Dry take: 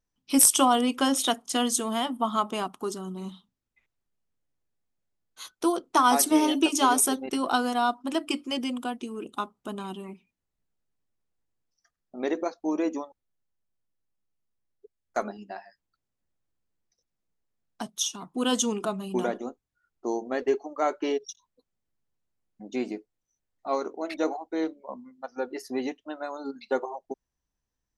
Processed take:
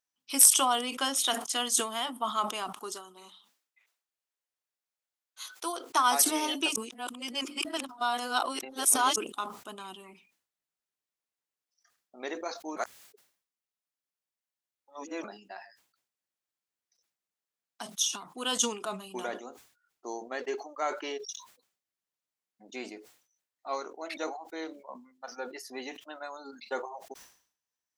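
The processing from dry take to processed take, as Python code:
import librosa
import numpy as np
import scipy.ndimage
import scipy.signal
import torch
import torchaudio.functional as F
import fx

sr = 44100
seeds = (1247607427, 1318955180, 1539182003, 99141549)

y = fx.highpass(x, sr, hz=380.0, slope=12, at=(2.92, 5.9))
y = fx.edit(y, sr, fx.reverse_span(start_s=6.76, length_s=2.4),
    fx.reverse_span(start_s=12.76, length_s=2.48), tone=tone)
y = fx.highpass(y, sr, hz=1300.0, slope=6)
y = fx.sustainer(y, sr, db_per_s=110.0)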